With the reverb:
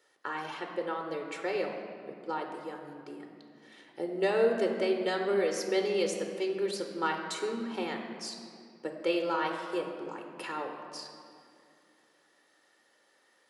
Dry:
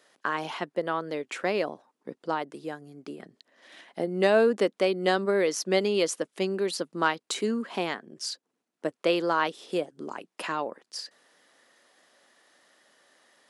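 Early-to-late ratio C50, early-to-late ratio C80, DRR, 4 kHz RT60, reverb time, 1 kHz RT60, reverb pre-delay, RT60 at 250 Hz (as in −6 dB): 5.5 dB, 6.5 dB, 3.0 dB, 1.4 s, 2.4 s, 2.3 s, 3 ms, 3.3 s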